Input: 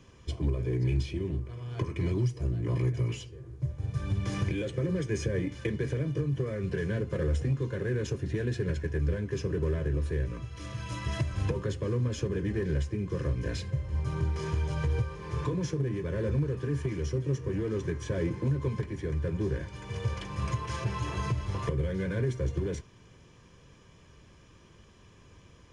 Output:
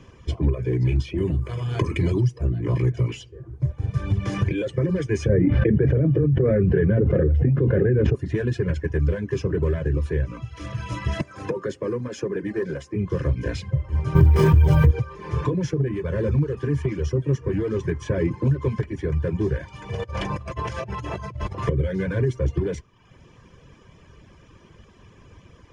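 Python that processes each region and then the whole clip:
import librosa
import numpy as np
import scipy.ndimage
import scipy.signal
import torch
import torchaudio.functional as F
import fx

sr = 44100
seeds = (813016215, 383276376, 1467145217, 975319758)

y = fx.chain(x, sr, fx.high_shelf(hz=4700.0, db=10.5),
    fx.notch(hz=5600.0, q=7.4),
    fx.env_flatten(amount_pct=50), at=(1.18, 2.21))
y = fx.chain(y, sr, fx.lowpass(hz=1300.0, slope=12),
    fx.peak_eq(hz=1000.0, db=-12.0, octaves=0.57),
    fx.env_flatten(amount_pct=100), at=(5.29, 8.15))
y = fx.chain(y, sr, fx.highpass(hz=240.0, slope=12),
    fx.peak_eq(hz=3000.0, db=-5.0, octaves=0.76), at=(11.21, 12.96))
y = fx.chain(y, sr, fx.low_shelf(hz=440.0, db=6.5),
    fx.resample_bad(factor=3, down='none', up='hold'),
    fx.env_flatten(amount_pct=70), at=(14.15, 14.91))
y = fx.chain(y, sr, fx.peak_eq(hz=640.0, db=7.5, octaves=0.6),
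    fx.over_compress(threshold_db=-37.0, ratio=-1.0), at=(19.9, 21.58))
y = fx.peak_eq(y, sr, hz=4000.0, db=-3.0, octaves=0.35)
y = fx.dereverb_blind(y, sr, rt60_s=0.78)
y = fx.high_shelf(y, sr, hz=5400.0, db=-10.5)
y = y * librosa.db_to_amplitude(8.5)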